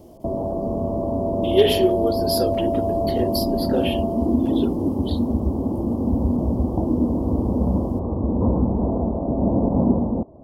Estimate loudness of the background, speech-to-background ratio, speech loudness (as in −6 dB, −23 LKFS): −22.5 LKFS, −2.5 dB, −25.0 LKFS